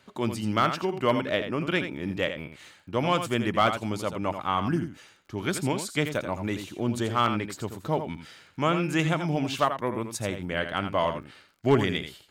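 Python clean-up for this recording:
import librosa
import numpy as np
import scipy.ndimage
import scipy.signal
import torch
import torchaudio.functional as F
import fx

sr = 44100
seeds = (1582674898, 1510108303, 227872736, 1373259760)

y = fx.fix_declip(x, sr, threshold_db=-12.5)
y = fx.fix_declick_ar(y, sr, threshold=6.5)
y = fx.fix_echo_inverse(y, sr, delay_ms=84, level_db=-9.0)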